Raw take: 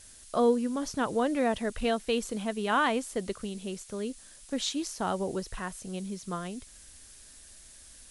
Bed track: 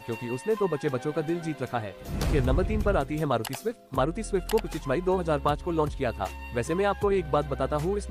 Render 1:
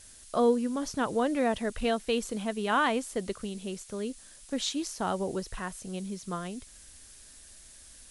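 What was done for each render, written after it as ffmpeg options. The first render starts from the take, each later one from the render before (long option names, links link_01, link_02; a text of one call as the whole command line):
ffmpeg -i in.wav -af anull out.wav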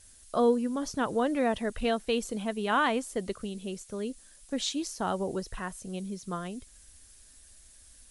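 ffmpeg -i in.wav -af "afftdn=noise_reduction=6:noise_floor=-52" out.wav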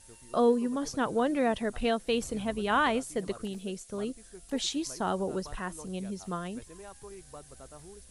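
ffmpeg -i in.wav -i bed.wav -filter_complex "[1:a]volume=-22.5dB[link_01];[0:a][link_01]amix=inputs=2:normalize=0" out.wav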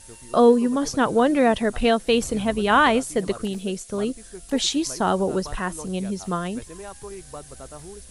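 ffmpeg -i in.wav -af "volume=9dB" out.wav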